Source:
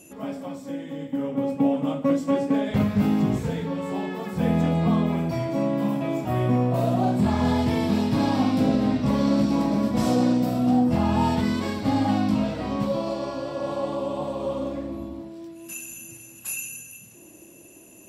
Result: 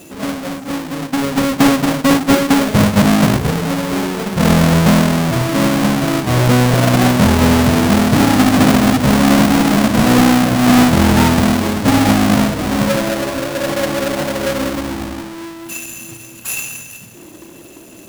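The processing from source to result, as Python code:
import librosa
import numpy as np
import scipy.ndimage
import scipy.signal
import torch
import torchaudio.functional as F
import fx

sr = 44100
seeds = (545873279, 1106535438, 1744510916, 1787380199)

y = fx.halfwave_hold(x, sr)
y = F.gain(torch.from_numpy(y), 6.0).numpy()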